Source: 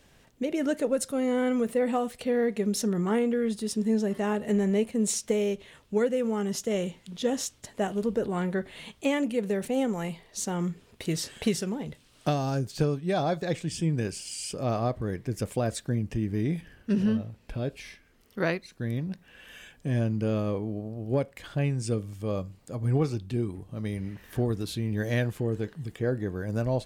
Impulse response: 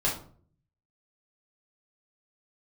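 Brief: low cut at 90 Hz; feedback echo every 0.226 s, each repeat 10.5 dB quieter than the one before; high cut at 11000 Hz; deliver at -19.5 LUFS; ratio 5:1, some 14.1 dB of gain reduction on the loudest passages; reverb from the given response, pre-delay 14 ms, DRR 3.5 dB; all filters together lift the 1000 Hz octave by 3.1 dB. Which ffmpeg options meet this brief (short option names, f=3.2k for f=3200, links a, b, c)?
-filter_complex "[0:a]highpass=90,lowpass=11k,equalizer=f=1k:t=o:g=4.5,acompressor=threshold=-37dB:ratio=5,aecho=1:1:226|452|678:0.299|0.0896|0.0269,asplit=2[a][b];[1:a]atrim=start_sample=2205,adelay=14[c];[b][c]afir=irnorm=-1:irlink=0,volume=-13dB[d];[a][d]amix=inputs=2:normalize=0,volume=18.5dB"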